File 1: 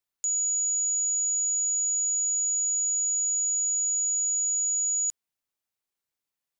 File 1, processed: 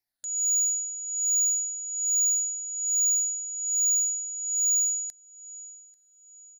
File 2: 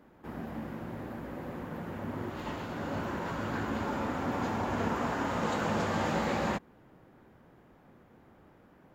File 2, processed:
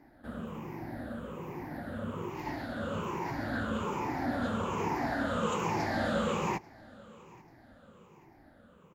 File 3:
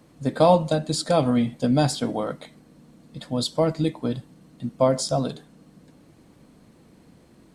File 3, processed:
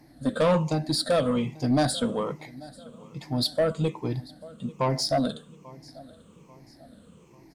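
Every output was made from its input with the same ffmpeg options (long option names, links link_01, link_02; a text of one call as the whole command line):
ffmpeg -i in.wav -af "afftfilt=real='re*pow(10,14/40*sin(2*PI*(0.75*log(max(b,1)*sr/1024/100)/log(2)-(-1.2)*(pts-256)/sr)))':imag='im*pow(10,14/40*sin(2*PI*(0.75*log(max(b,1)*sr/1024/100)/log(2)-(-1.2)*(pts-256)/sr)))':win_size=1024:overlap=0.75,aecho=1:1:840|1680|2520:0.0631|0.0278|0.0122,asoftclip=type=tanh:threshold=-14dB,volume=-2.5dB" out.wav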